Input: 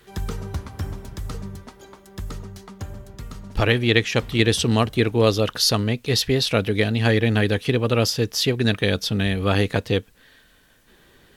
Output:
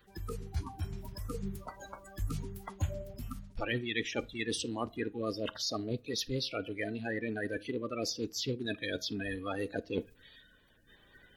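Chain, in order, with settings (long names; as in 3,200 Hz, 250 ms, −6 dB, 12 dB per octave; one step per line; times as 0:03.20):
spectral magnitudes quantised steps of 30 dB
reversed playback
downward compressor 12 to 1, threshold −31 dBFS, peak gain reduction 18.5 dB
reversed playback
low-shelf EQ 96 Hz +8.5 dB
on a send at −19 dB: convolution reverb RT60 0.70 s, pre-delay 30 ms
on the sum: speech leveller within 4 dB 2 s
noise reduction from a noise print of the clip's start 11 dB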